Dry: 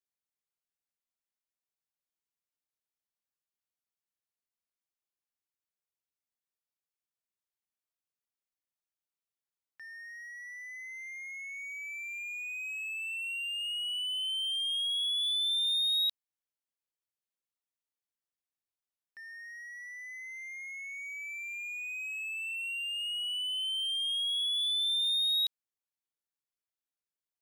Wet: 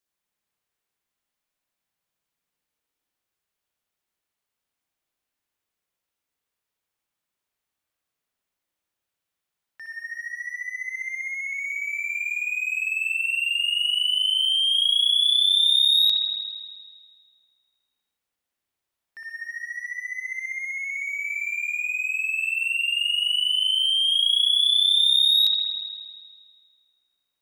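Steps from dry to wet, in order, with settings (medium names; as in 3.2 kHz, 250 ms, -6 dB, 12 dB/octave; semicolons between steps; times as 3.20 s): spring tank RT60 1.8 s, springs 58 ms, chirp 25 ms, DRR -2 dB; trim +8 dB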